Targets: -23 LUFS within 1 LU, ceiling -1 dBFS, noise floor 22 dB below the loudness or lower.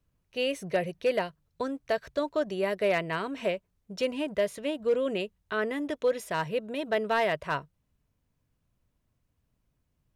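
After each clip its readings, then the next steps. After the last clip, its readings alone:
clipped samples 0.2%; clipping level -18.5 dBFS; loudness -30.5 LUFS; peak level -18.5 dBFS; loudness target -23.0 LUFS
-> clip repair -18.5 dBFS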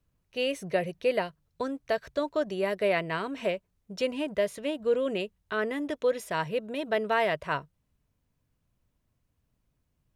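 clipped samples 0.0%; loudness -30.0 LUFS; peak level -14.0 dBFS; loudness target -23.0 LUFS
-> trim +7 dB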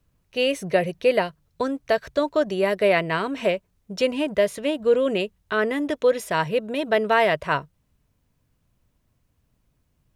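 loudness -23.0 LUFS; peak level -7.0 dBFS; noise floor -70 dBFS

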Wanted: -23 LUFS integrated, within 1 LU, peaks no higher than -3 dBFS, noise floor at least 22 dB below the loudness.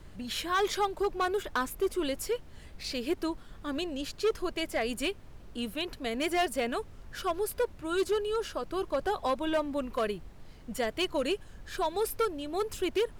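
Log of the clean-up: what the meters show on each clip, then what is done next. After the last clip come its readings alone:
clipped samples 1.3%; clipping level -22.5 dBFS; noise floor -50 dBFS; noise floor target -54 dBFS; loudness -32.0 LUFS; peak level -22.5 dBFS; loudness target -23.0 LUFS
-> clip repair -22.5 dBFS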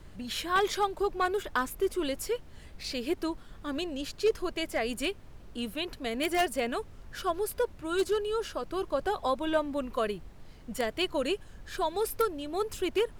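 clipped samples 0.0%; noise floor -50 dBFS; noise floor target -54 dBFS
-> noise print and reduce 6 dB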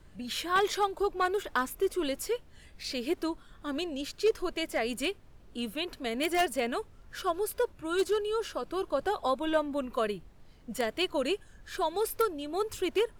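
noise floor -55 dBFS; loudness -31.5 LUFS; peak level -13.5 dBFS; loudness target -23.0 LUFS
-> trim +8.5 dB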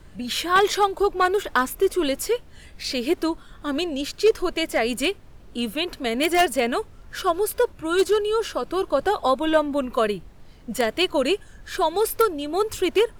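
loudness -23.0 LUFS; peak level -5.0 dBFS; noise floor -47 dBFS

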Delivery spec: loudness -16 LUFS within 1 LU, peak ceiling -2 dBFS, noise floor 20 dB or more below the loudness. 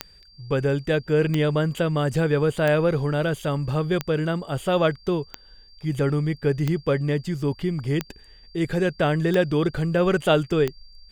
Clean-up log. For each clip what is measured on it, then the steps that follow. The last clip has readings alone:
clicks found 9; steady tone 4.7 kHz; tone level -51 dBFS; loudness -23.5 LUFS; peak level -6.0 dBFS; loudness target -16.0 LUFS
-> de-click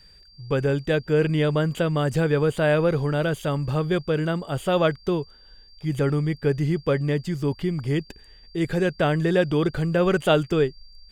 clicks found 0; steady tone 4.7 kHz; tone level -51 dBFS
-> band-stop 4.7 kHz, Q 30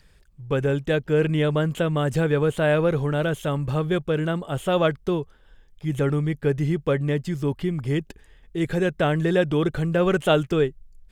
steady tone not found; loudness -23.5 LUFS; peak level -6.0 dBFS; loudness target -16.0 LUFS
-> trim +7.5 dB; peak limiter -2 dBFS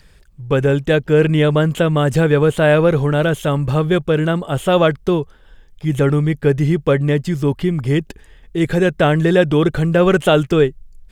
loudness -16.0 LUFS; peak level -2.0 dBFS; noise floor -48 dBFS

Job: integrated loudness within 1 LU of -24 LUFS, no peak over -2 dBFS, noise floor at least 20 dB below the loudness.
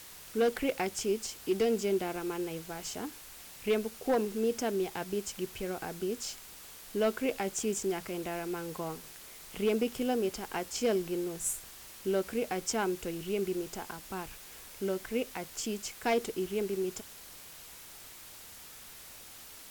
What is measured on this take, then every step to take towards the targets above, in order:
clipped samples 0.4%; clipping level -21.5 dBFS; noise floor -50 dBFS; noise floor target -54 dBFS; loudness -33.5 LUFS; peak level -21.5 dBFS; loudness target -24.0 LUFS
-> clip repair -21.5 dBFS; noise reduction 6 dB, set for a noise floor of -50 dBFS; trim +9.5 dB

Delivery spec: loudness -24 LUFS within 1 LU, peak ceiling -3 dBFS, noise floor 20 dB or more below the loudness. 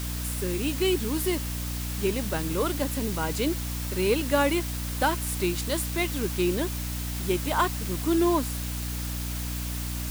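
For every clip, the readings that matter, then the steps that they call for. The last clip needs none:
hum 60 Hz; highest harmonic 300 Hz; hum level -30 dBFS; noise floor -32 dBFS; noise floor target -48 dBFS; loudness -27.5 LUFS; peak level -11.0 dBFS; loudness target -24.0 LUFS
-> hum notches 60/120/180/240/300 Hz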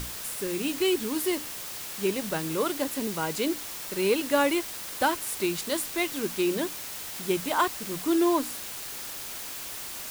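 hum not found; noise floor -38 dBFS; noise floor target -49 dBFS
-> noise print and reduce 11 dB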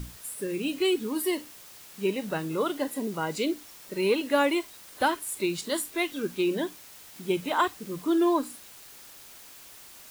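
noise floor -49 dBFS; loudness -28.5 LUFS; peak level -11.0 dBFS; loudness target -24.0 LUFS
-> trim +4.5 dB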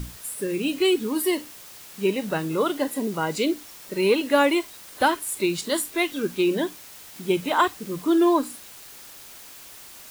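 loudness -24.0 LUFS; peak level -6.5 dBFS; noise floor -44 dBFS

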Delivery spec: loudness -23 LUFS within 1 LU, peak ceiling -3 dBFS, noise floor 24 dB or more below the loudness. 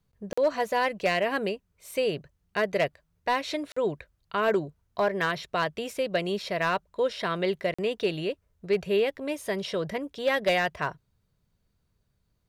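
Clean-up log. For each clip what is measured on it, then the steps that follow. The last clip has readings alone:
clipped samples 0.3%; clipping level -17.0 dBFS; dropouts 3; longest dropout 45 ms; loudness -28.5 LUFS; peak level -17.0 dBFS; loudness target -23.0 LUFS
-> clip repair -17 dBFS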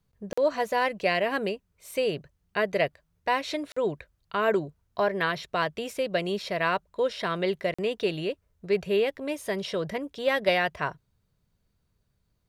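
clipped samples 0.0%; dropouts 3; longest dropout 45 ms
-> interpolate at 0.33/3.72/7.74 s, 45 ms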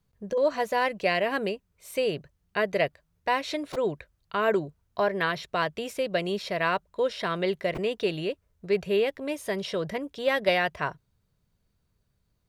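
dropouts 0; loudness -28.5 LUFS; peak level -11.0 dBFS; loudness target -23.0 LUFS
-> trim +5.5 dB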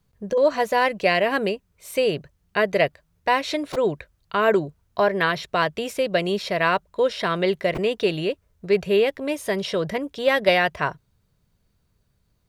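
loudness -23.0 LUFS; peak level -5.5 dBFS; noise floor -68 dBFS

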